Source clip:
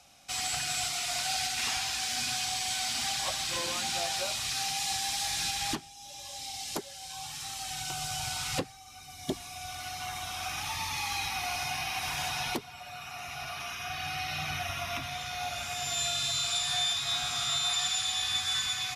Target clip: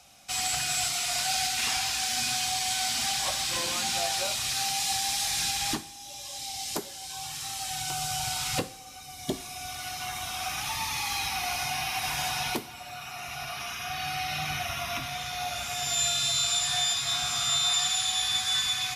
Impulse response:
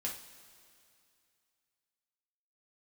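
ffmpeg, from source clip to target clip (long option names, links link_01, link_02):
-filter_complex "[0:a]asplit=2[link_01][link_02];[1:a]atrim=start_sample=2205,highshelf=frequency=7300:gain=12[link_03];[link_02][link_03]afir=irnorm=-1:irlink=0,volume=-8dB[link_04];[link_01][link_04]amix=inputs=2:normalize=0"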